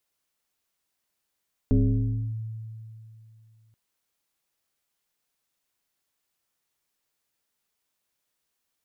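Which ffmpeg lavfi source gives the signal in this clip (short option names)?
-f lavfi -i "aevalsrc='0.168*pow(10,-3*t/2.82)*sin(2*PI*111*t+1.4*clip(1-t/0.65,0,1)*sin(2*PI*1.38*111*t))':d=2.03:s=44100"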